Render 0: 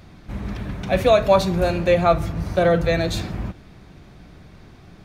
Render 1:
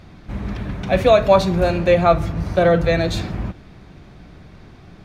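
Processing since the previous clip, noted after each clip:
high-shelf EQ 8,100 Hz −9 dB
level +2.5 dB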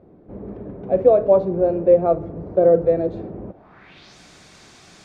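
RIAA equalisation recording
noise that follows the level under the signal 19 dB
low-pass filter sweep 450 Hz → 7,500 Hz, 0:03.47–0:04.18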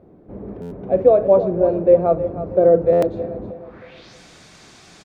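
repeating echo 315 ms, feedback 38%, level −12 dB
buffer that repeats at 0:00.61/0:02.92, samples 512, times 8
level +1 dB

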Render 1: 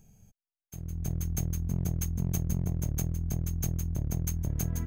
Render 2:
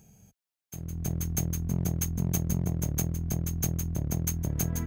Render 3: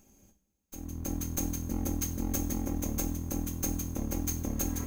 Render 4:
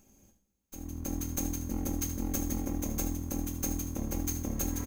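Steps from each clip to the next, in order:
high-pass filter 60 Hz; parametric band 89 Hz −4.5 dB 1.6 octaves; level +5 dB
lower of the sound and its delayed copy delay 3.7 ms; coupled-rooms reverb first 0.44 s, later 4.3 s, from −20 dB, DRR 4 dB; level −2.5 dB
single-tap delay 76 ms −11 dB; level −1 dB

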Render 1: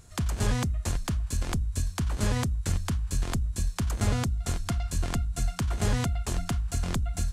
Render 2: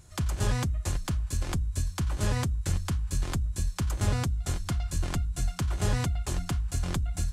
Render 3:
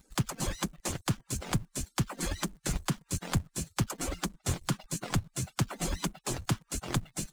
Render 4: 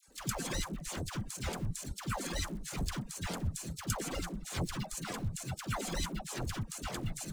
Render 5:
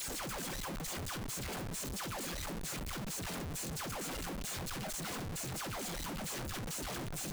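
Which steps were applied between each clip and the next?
notch comb filter 230 Hz
harmonic-percussive split with one part muted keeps percussive; in parallel at −7.5 dB: log-companded quantiser 4 bits
transient designer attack −9 dB, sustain +9 dB; all-pass dispersion lows, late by 83 ms, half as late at 880 Hz; level −1.5 dB
sign of each sample alone; level −2.5 dB

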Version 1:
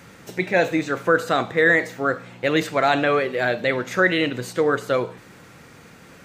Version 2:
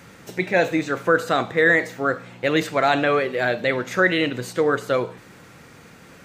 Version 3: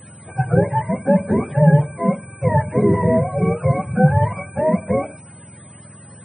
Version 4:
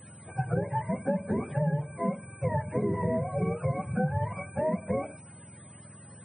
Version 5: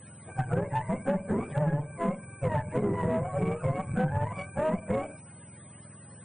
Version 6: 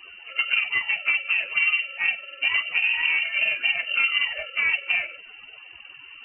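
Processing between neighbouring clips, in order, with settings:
no processing that can be heard
frequency axis turned over on the octave scale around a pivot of 530 Hz; steady tone 8,100 Hz −47 dBFS; level +3 dB
downward compressor 6 to 1, threshold −17 dBFS, peak gain reduction 9.5 dB; level −7.5 dB
harmonic generator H 6 −21 dB, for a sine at −15.5 dBFS
voice inversion scrambler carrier 2,900 Hz; level +5 dB

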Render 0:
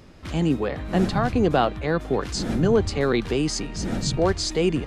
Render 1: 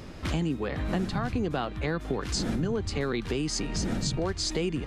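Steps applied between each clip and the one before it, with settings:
dynamic equaliser 610 Hz, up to −5 dB, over −33 dBFS, Q 1.2
downward compressor 6 to 1, threshold −32 dBFS, peak gain reduction 14.5 dB
level +5.5 dB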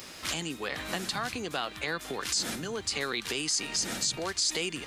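spectral tilt +4.5 dB per octave
brickwall limiter −18.5 dBFS, peak gain reduction 11 dB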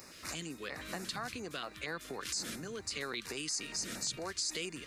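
auto-filter notch square 4.3 Hz 820–3,200 Hz
level −6.5 dB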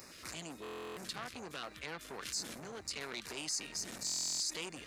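buffer that repeats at 0:00.62/0:04.05, samples 1,024, times 14
saturating transformer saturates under 2,500 Hz

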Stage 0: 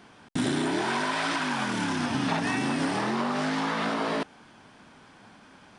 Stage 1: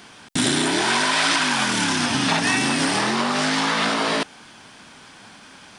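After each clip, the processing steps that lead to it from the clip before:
high-shelf EQ 2,100 Hz +12 dB
level +4 dB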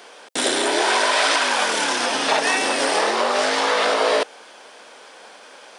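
high-pass with resonance 500 Hz, resonance Q 3.5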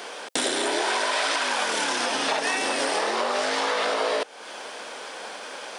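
downward compressor 3 to 1, threshold −33 dBFS, peak gain reduction 13.5 dB
level +6.5 dB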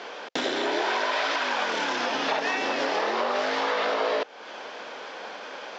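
downsampling to 16,000 Hz
high-frequency loss of the air 140 metres

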